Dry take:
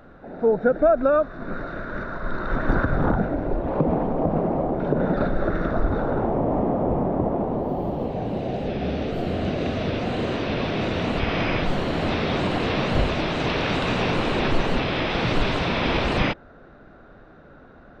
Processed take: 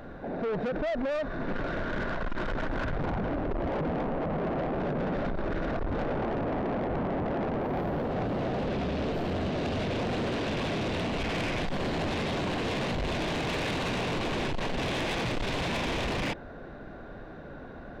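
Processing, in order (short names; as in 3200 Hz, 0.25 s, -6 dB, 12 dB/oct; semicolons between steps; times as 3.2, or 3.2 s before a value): notch 1300 Hz, Q 6.4; limiter -21 dBFS, peak gain reduction 13.5 dB; soft clip -32.5 dBFS, distortion -9 dB; gain +5 dB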